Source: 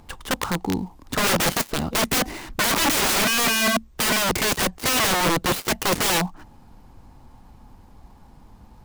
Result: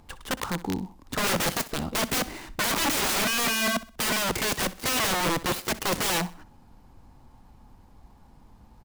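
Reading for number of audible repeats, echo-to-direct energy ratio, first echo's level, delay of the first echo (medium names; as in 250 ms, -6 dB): 2, -17.0 dB, -17.5 dB, 63 ms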